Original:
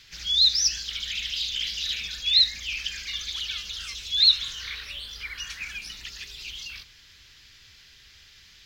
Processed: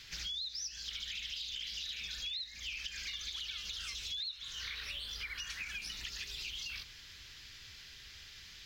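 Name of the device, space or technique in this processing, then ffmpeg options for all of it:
serial compression, peaks first: -af "acompressor=threshold=-35dB:ratio=5,acompressor=threshold=-40dB:ratio=2.5"

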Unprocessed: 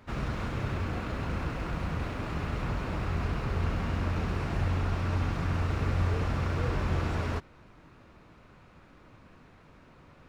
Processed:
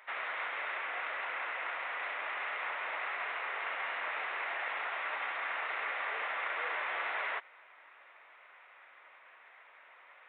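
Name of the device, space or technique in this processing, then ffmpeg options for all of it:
musical greeting card: -af "aresample=8000,aresample=44100,highpass=frequency=640:width=0.5412,highpass=frequency=640:width=1.3066,equalizer=frequency=2000:width_type=o:width=0.52:gain=10.5"

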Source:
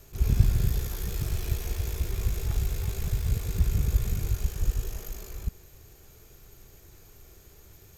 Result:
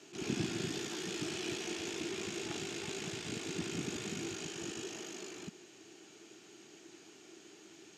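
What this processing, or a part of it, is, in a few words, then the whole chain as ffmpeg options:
television speaker: -af "highpass=frequency=210:width=0.5412,highpass=frequency=210:width=1.3066,equalizer=frequency=320:width_type=q:width=4:gain=10,equalizer=frequency=520:width_type=q:width=4:gain=-10,equalizer=frequency=1100:width_type=q:width=4:gain=-4,equalizer=frequency=2900:width_type=q:width=4:gain=7,lowpass=frequency=7400:width=0.5412,lowpass=frequency=7400:width=1.3066,volume=1.5dB"

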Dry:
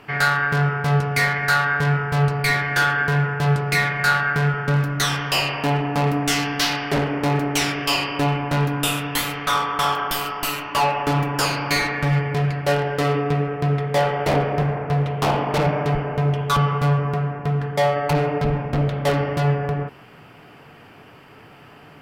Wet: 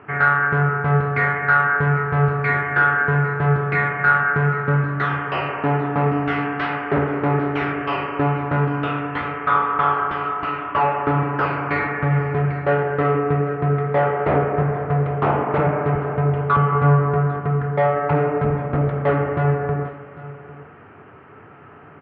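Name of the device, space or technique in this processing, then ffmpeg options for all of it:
bass cabinet: -filter_complex "[0:a]asettb=1/sr,asplit=3[link_01][link_02][link_03];[link_01]atrim=end=16.704[link_04];[link_02]atrim=start=16.7:end=17.4,asetpts=PTS-STARTPTS,afade=type=in:duration=0.004:curve=qsin,afade=type=out:start_time=0.696:duration=0.004:curve=qsin,asplit=2[link_05][link_06];[link_06]adelay=21,volume=-6dB[link_07];[link_05][link_07]amix=inputs=2:normalize=0,atrim=end_sample=30870[link_08];[link_03]atrim=start=17.396[link_09];[link_04][link_08]acrossfade=duration=0.004:curve1=hsin:curve2=qsin[link_10];[link_10][link_09]acrossfade=duration=0.004:curve1=qsin:curve2=hsin,highpass=71,equalizer=frequency=87:width_type=q:width=4:gain=8,equalizer=frequency=390:width_type=q:width=4:gain=5,equalizer=frequency=1300:width_type=q:width=4:gain=6,lowpass=frequency=2100:width=0.5412,lowpass=frequency=2100:width=1.3066,aecho=1:1:798:0.133"

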